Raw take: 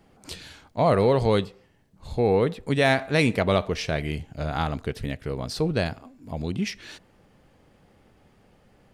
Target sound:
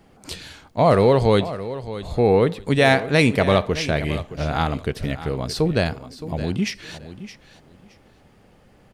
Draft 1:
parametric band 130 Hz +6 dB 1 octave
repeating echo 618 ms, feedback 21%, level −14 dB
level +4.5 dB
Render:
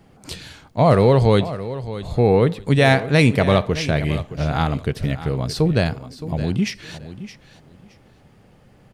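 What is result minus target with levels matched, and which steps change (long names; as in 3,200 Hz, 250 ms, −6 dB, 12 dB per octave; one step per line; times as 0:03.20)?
125 Hz band +3.0 dB
remove: parametric band 130 Hz +6 dB 1 octave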